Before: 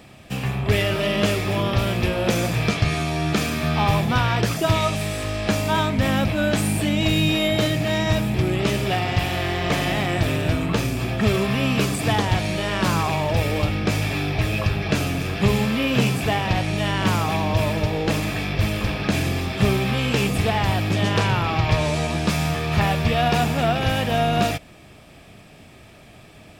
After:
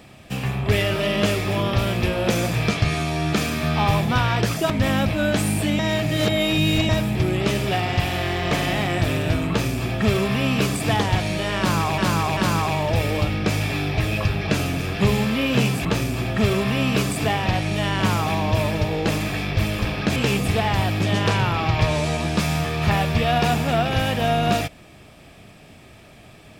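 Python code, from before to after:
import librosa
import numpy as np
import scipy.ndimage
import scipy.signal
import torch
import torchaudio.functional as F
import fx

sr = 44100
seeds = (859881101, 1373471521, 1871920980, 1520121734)

y = fx.edit(x, sr, fx.cut(start_s=4.7, length_s=1.19),
    fx.reverse_span(start_s=6.98, length_s=1.1),
    fx.duplicate(start_s=10.68, length_s=1.39, to_s=16.26),
    fx.repeat(start_s=12.78, length_s=0.39, count=3),
    fx.cut(start_s=19.18, length_s=0.88), tone=tone)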